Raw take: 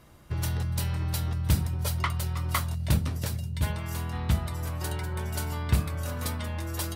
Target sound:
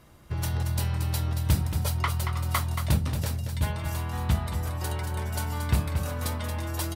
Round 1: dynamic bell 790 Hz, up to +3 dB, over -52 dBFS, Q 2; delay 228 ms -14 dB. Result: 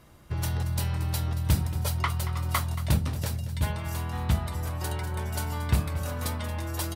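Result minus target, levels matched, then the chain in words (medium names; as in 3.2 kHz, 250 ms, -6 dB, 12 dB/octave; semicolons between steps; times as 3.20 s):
echo-to-direct -6.5 dB
dynamic bell 790 Hz, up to +3 dB, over -52 dBFS, Q 2; delay 228 ms -7.5 dB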